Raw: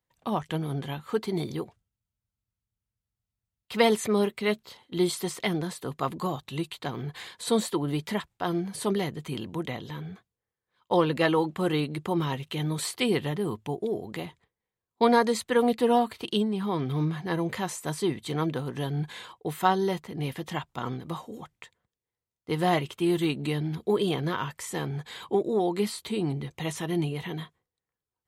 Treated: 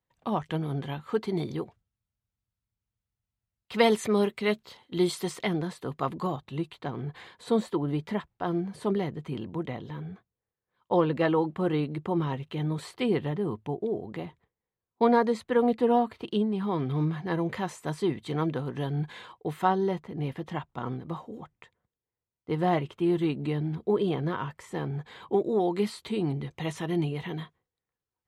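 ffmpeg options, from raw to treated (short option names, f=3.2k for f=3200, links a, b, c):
-af "asetnsamples=n=441:p=0,asendcmd='3.74 lowpass f 5600;5.43 lowpass f 2600;6.36 lowpass f 1300;16.52 lowpass f 2400;19.65 lowpass f 1300;25.33 lowpass f 3200',lowpass=f=3.1k:p=1"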